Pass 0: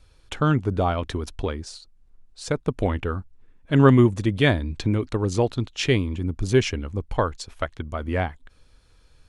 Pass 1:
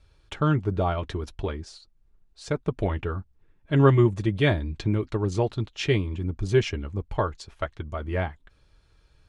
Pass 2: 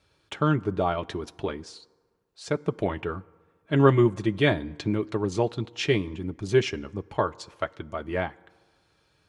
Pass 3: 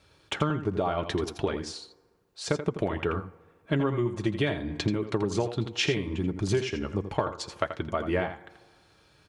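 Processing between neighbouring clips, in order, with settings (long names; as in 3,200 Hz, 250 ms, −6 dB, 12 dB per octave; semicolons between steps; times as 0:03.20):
high-shelf EQ 7,700 Hz −11.5 dB; notch comb filter 250 Hz; level −1.5 dB
high-pass filter 150 Hz 12 dB per octave; on a send at −21.5 dB: convolution reverb RT60 1.6 s, pre-delay 3 ms; on the sum: level +1 dB
downward compressor 16 to 1, threshold −28 dBFS, peak gain reduction 17.5 dB; on a send: single-tap delay 83 ms −10 dB; on the sum: level +5.5 dB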